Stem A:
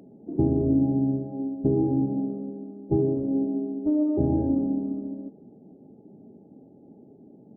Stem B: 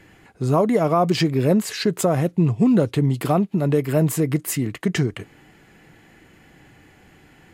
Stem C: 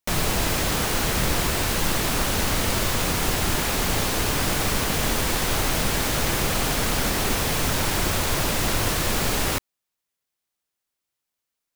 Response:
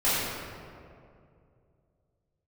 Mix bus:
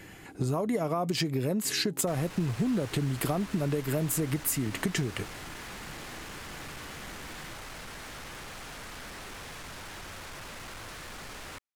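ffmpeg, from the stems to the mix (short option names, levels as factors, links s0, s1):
-filter_complex "[0:a]volume=0.112[s0];[1:a]highshelf=f=5200:g=8.5,volume=1.19[s1];[2:a]lowpass=11000,equalizer=f=1600:t=o:w=1.9:g=7,asoftclip=type=tanh:threshold=0.0531,adelay=2000,volume=0.178[s2];[s0][s1]amix=inputs=2:normalize=0,acompressor=threshold=0.0631:ratio=5,volume=1[s3];[s2][s3]amix=inputs=2:normalize=0,acompressor=threshold=0.0447:ratio=2"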